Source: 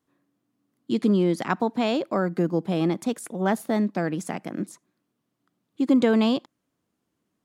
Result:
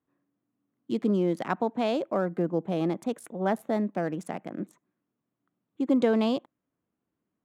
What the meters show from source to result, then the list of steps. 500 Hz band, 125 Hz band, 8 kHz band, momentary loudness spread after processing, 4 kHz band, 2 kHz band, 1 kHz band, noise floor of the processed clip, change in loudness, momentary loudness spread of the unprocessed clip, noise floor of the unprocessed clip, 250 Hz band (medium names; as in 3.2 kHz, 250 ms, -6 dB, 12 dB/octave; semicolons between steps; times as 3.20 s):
-2.0 dB, -5.0 dB, -10.5 dB, 11 LU, -6.5 dB, -5.5 dB, -3.0 dB, -85 dBFS, -4.0 dB, 11 LU, -79 dBFS, -5.0 dB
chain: local Wiener filter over 9 samples; dynamic bell 590 Hz, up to +5 dB, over -38 dBFS, Q 1.3; trim -5.5 dB